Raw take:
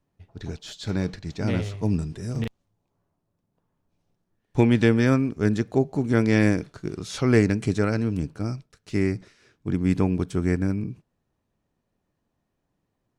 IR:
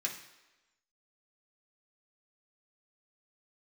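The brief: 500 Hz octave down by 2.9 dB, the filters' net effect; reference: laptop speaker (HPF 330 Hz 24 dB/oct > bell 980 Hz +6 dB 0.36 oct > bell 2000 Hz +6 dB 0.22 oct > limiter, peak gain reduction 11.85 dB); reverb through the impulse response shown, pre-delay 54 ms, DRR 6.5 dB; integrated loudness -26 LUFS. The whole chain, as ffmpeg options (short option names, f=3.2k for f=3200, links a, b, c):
-filter_complex "[0:a]equalizer=f=500:t=o:g=-3,asplit=2[a][b];[1:a]atrim=start_sample=2205,adelay=54[c];[b][c]afir=irnorm=-1:irlink=0,volume=-9dB[d];[a][d]amix=inputs=2:normalize=0,highpass=f=330:w=0.5412,highpass=f=330:w=1.3066,equalizer=f=980:t=o:w=0.36:g=6,equalizer=f=2k:t=o:w=0.22:g=6,volume=8dB,alimiter=limit=-13.5dB:level=0:latency=1"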